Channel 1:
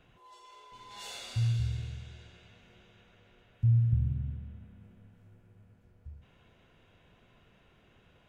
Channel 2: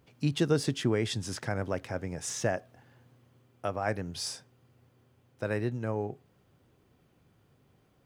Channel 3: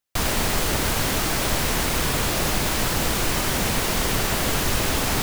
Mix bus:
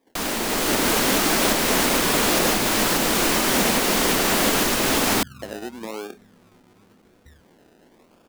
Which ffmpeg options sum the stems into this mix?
ffmpeg -i stem1.wav -i stem2.wav -i stem3.wav -filter_complex "[0:a]adelay=1200,volume=2dB[link_01];[1:a]highpass=frequency=230:width=0.5412,highpass=frequency=230:width=1.3066,volume=0.5dB[link_02];[2:a]alimiter=limit=-14dB:level=0:latency=1:release=498,volume=0dB[link_03];[link_01][link_02]amix=inputs=2:normalize=0,acrusher=samples=31:mix=1:aa=0.000001:lfo=1:lforange=18.6:lforate=0.94,acompressor=threshold=-37dB:ratio=4,volume=0dB[link_04];[link_03][link_04]amix=inputs=2:normalize=0,lowshelf=frequency=160:width_type=q:width=1.5:gain=-11.5,dynaudnorm=framelen=110:gausssize=11:maxgain=6.5dB" out.wav

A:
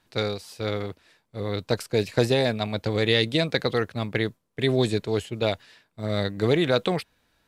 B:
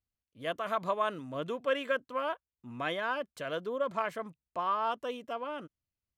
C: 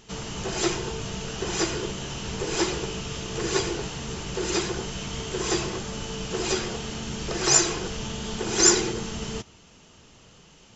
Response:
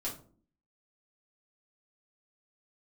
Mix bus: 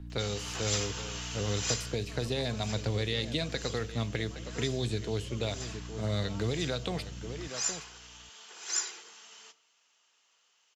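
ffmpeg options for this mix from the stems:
-filter_complex "[0:a]highshelf=frequency=8500:gain=-8.5,alimiter=limit=-13dB:level=0:latency=1:release=205,aeval=exprs='val(0)+0.01*(sin(2*PI*60*n/s)+sin(2*PI*2*60*n/s)/2+sin(2*PI*3*60*n/s)/3+sin(2*PI*4*60*n/s)/4+sin(2*PI*5*60*n/s)/5)':channel_layout=same,volume=-2dB,asplit=3[link_01][link_02][link_03];[link_02]volume=-14dB[link_04];[link_03]volume=-15.5dB[link_05];[1:a]adelay=1500,volume=-18dB[link_06];[2:a]highpass=1100,acrusher=bits=9:mode=log:mix=0:aa=0.000001,adelay=100,volume=-3dB,afade=type=out:start_time=1.7:duration=0.27:silence=0.266073,asplit=2[link_07][link_08];[link_08]volume=-12dB[link_09];[3:a]atrim=start_sample=2205[link_10];[link_04][link_09]amix=inputs=2:normalize=0[link_11];[link_11][link_10]afir=irnorm=-1:irlink=0[link_12];[link_05]aecho=0:1:816:1[link_13];[link_01][link_06][link_07][link_12][link_13]amix=inputs=5:normalize=0,acrossover=split=130|3000[link_14][link_15][link_16];[link_15]acompressor=threshold=-33dB:ratio=4[link_17];[link_14][link_17][link_16]amix=inputs=3:normalize=0"

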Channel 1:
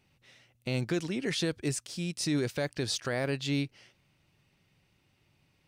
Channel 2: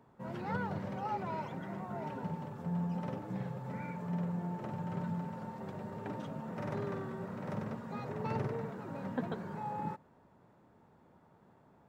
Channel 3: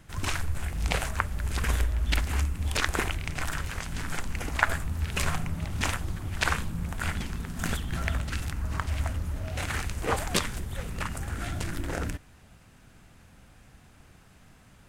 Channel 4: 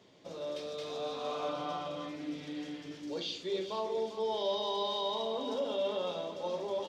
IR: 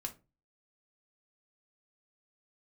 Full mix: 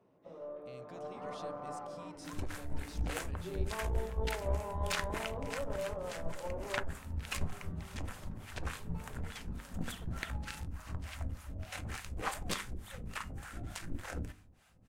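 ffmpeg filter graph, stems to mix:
-filter_complex "[0:a]bandreject=frequency=4500:width=21,alimiter=level_in=3.5dB:limit=-24dB:level=0:latency=1:release=278,volume=-3.5dB,volume=-14dB[link_01];[1:a]adelay=700,volume=-13.5dB[link_02];[2:a]acrossover=split=630[link_03][link_04];[link_03]aeval=exprs='val(0)*(1-1/2+1/2*cos(2*PI*3.4*n/s))':channel_layout=same[link_05];[link_04]aeval=exprs='val(0)*(1-1/2-1/2*cos(2*PI*3.4*n/s))':channel_layout=same[link_06];[link_05][link_06]amix=inputs=2:normalize=0,adelay=2150,volume=-6.5dB,asplit=2[link_07][link_08];[link_08]volume=-3dB[link_09];[3:a]lowpass=frequency=1400:width=0.5412,lowpass=frequency=1400:width=1.3066,volume=-3dB[link_10];[4:a]atrim=start_sample=2205[link_11];[link_09][link_11]afir=irnorm=-1:irlink=0[link_12];[link_01][link_02][link_07][link_10][link_12]amix=inputs=5:normalize=0,bandreject=frequency=50:width_type=h:width=6,bandreject=frequency=100:width_type=h:width=6,bandreject=frequency=150:width_type=h:width=6,bandreject=frequency=200:width_type=h:width=6,bandreject=frequency=250:width_type=h:width=6,bandreject=frequency=300:width_type=h:width=6,bandreject=frequency=350:width_type=h:width=6,bandreject=frequency=400:width_type=h:width=6,bandreject=frequency=450:width_type=h:width=6,aeval=exprs='(tanh(12.6*val(0)+0.55)-tanh(0.55))/12.6':channel_layout=same"

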